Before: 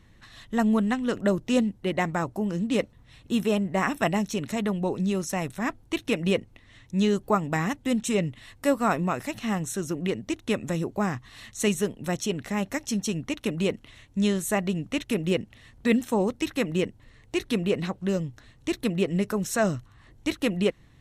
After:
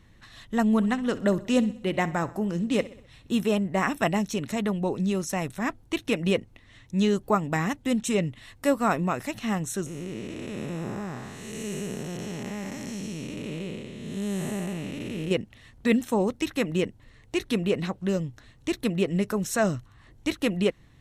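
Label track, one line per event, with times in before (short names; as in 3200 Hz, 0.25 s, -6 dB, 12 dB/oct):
0.660000	3.350000	feedback echo 64 ms, feedback 52%, level -18 dB
9.860000	15.310000	time blur width 0.415 s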